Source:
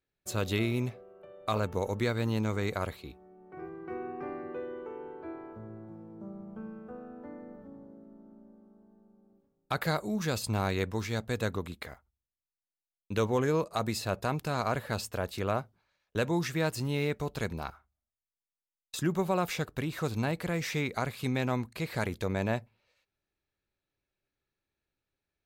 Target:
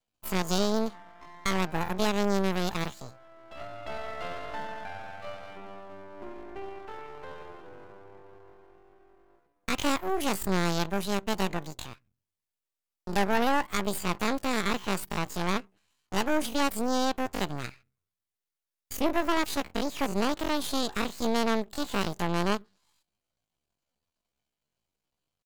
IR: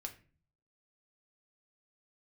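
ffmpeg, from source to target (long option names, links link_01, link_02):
-af "aeval=exprs='max(val(0),0)':channel_layout=same,asetrate=78577,aresample=44100,atempo=0.561231,volume=6dB"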